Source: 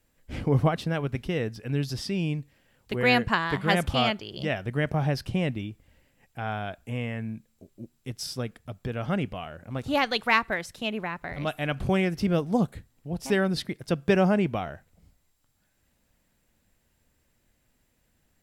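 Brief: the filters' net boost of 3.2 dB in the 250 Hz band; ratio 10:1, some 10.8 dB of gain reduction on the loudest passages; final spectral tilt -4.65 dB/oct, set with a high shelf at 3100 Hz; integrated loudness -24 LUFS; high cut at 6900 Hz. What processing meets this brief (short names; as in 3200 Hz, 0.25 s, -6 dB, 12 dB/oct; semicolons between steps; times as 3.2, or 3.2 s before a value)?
LPF 6900 Hz; bell 250 Hz +4.5 dB; high shelf 3100 Hz +6.5 dB; compressor 10:1, threshold -26 dBFS; gain +8.5 dB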